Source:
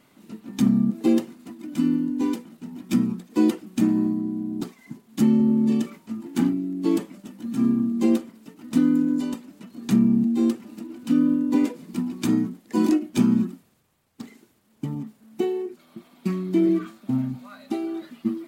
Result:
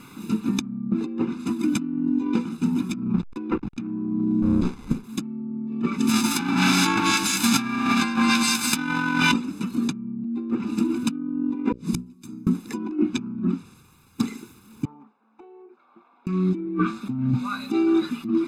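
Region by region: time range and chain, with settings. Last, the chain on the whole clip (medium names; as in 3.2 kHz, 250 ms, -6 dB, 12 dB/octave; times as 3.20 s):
3.14–3.87 s: hysteresis with a dead band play -33.5 dBFS + peaking EQ 2.1 kHz +3.5 dB 1.5 oct
4.42–5.04 s: treble shelf 3.6 kHz +7.5 dB + sliding maximum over 33 samples
5.98–9.31 s: formants flattened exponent 0.1 + two-band feedback delay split 1.2 kHz, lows 134 ms, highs 199 ms, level -8 dB
11.72–12.47 s: inverted gate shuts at -29 dBFS, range -34 dB + tone controls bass +7 dB, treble +8 dB + hum notches 60/120/180/240/300/360/420/480/540 Hz
14.85–16.27 s: ladder band-pass 780 Hz, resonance 50% + compression, threshold -55 dBFS
whole clip: low-pass that closes with the level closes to 2 kHz, closed at -18 dBFS; comb 0.8 ms, depth 88%; compressor with a negative ratio -28 dBFS, ratio -1; trim +3.5 dB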